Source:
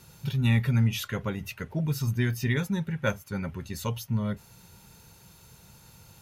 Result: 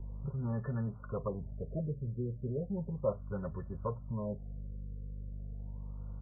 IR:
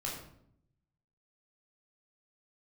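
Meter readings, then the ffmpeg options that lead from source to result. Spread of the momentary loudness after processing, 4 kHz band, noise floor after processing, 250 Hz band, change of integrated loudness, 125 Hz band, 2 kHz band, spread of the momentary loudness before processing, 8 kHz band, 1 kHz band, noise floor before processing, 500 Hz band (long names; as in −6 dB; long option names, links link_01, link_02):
9 LU, below −40 dB, −47 dBFS, −9.5 dB, −10.5 dB, −10.5 dB, −24.0 dB, 10 LU, below −35 dB, −7.0 dB, −55 dBFS, −2.0 dB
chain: -filter_complex "[0:a]equalizer=frequency=1300:width_type=o:width=0.77:gain=-2.5,aeval=exprs='val(0)+0.01*(sin(2*PI*50*n/s)+sin(2*PI*2*50*n/s)/2+sin(2*PI*3*50*n/s)/3+sin(2*PI*4*50*n/s)/4+sin(2*PI*5*50*n/s)/5)':channel_layout=same,acrossover=split=200|1300[link_01][link_02][link_03];[link_01]acompressor=threshold=-39dB:ratio=6[link_04];[link_04][link_02][link_03]amix=inputs=3:normalize=0,aecho=1:1:1.8:0.54,asplit=2[link_05][link_06];[link_06]asoftclip=type=tanh:threshold=-30.5dB,volume=-5dB[link_07];[link_05][link_07]amix=inputs=2:normalize=0,asuperstop=centerf=1600:order=8:qfactor=6.3,afftfilt=real='re*lt(b*sr/1024,560*pow(1800/560,0.5+0.5*sin(2*PI*0.35*pts/sr)))':imag='im*lt(b*sr/1024,560*pow(1800/560,0.5+0.5*sin(2*PI*0.35*pts/sr)))':win_size=1024:overlap=0.75,volume=-6dB"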